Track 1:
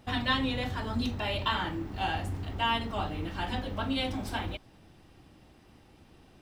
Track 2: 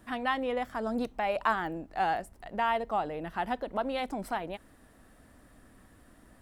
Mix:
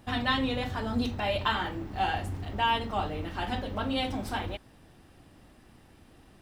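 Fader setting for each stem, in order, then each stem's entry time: -0.5 dB, -4.0 dB; 0.00 s, 0.00 s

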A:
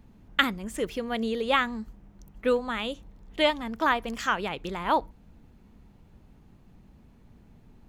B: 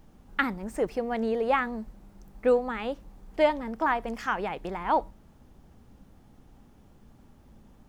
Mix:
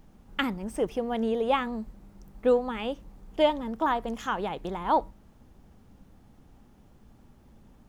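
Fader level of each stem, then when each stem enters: -10.5 dB, -1.0 dB; 0.00 s, 0.00 s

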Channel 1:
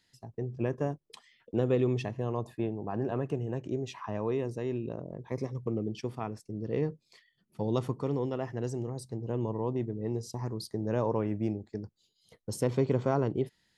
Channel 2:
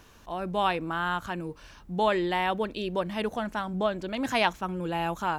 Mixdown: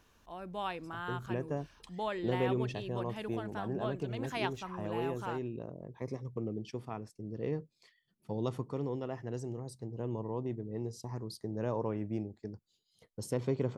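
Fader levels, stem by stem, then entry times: -5.0 dB, -11.5 dB; 0.70 s, 0.00 s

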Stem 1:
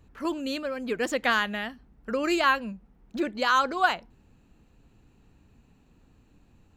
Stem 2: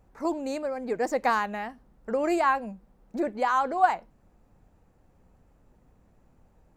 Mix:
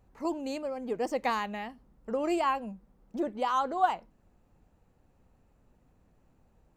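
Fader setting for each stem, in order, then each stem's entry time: -15.0 dB, -4.5 dB; 0.00 s, 0.00 s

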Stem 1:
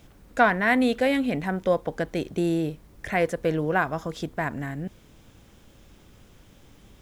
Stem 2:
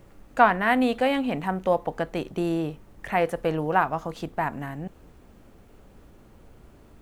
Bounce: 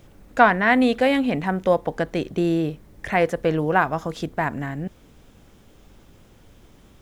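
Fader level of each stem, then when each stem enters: -1.0 dB, -3.0 dB; 0.00 s, 0.00 s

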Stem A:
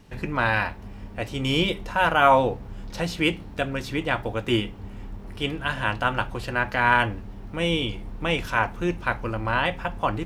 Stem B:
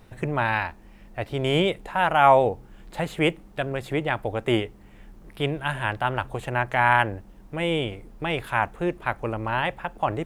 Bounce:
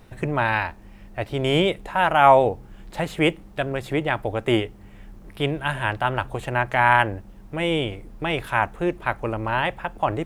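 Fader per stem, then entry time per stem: -16.0 dB, +2.0 dB; 0.00 s, 0.00 s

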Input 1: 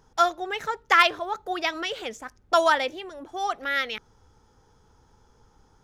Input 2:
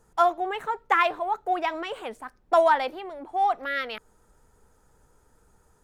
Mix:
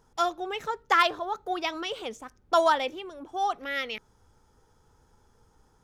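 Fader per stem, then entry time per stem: -4.5 dB, -8.0 dB; 0.00 s, 0.00 s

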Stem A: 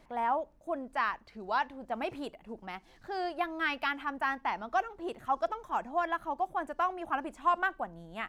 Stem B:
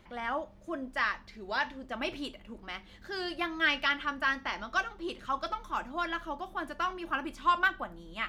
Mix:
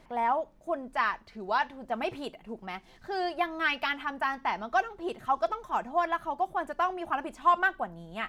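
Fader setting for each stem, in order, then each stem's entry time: +2.5 dB, -8.0 dB; 0.00 s, 0.00 s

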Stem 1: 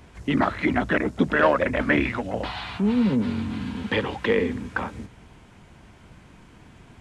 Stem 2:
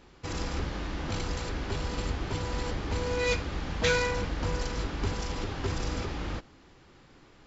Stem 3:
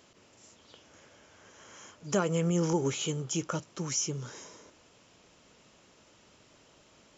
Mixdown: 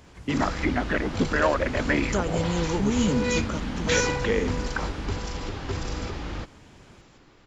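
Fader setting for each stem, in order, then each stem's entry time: -3.5 dB, +1.0 dB, 0.0 dB; 0.00 s, 0.05 s, 0.00 s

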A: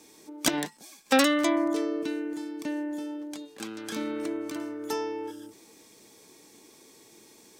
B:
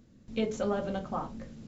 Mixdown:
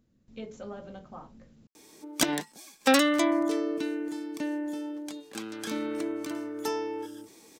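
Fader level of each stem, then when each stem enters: 0.0 dB, -10.5 dB; 1.75 s, 0.00 s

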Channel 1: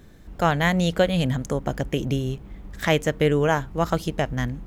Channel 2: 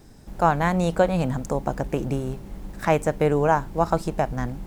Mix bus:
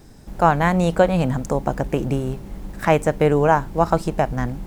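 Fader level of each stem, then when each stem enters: -17.0 dB, +3.0 dB; 0.00 s, 0.00 s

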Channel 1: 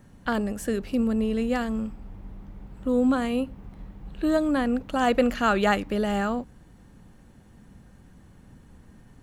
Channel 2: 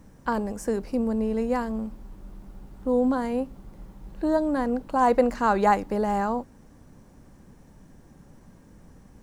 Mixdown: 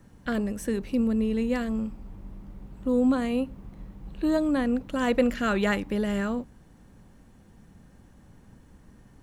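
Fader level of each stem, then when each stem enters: -3.0 dB, -8.0 dB; 0.00 s, 0.00 s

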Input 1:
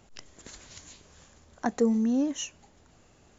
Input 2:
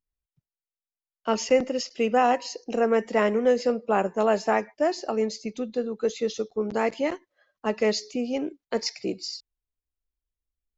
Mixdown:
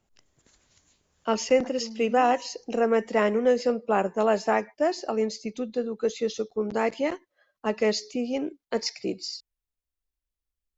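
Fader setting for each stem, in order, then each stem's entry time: -15.0 dB, -0.5 dB; 0.00 s, 0.00 s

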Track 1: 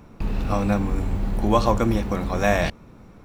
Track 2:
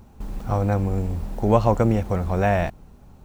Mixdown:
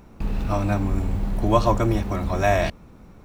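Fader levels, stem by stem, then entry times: -2.0 dB, -4.5 dB; 0.00 s, 0.00 s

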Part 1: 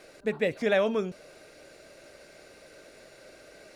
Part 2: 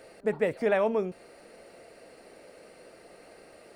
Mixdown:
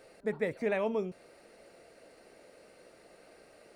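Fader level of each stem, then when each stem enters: -14.5 dB, -6.0 dB; 0.00 s, 0.00 s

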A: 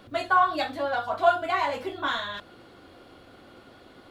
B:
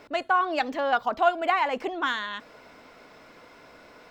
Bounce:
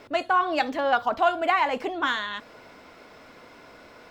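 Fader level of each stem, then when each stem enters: -8.5 dB, +1.5 dB; 0.00 s, 0.00 s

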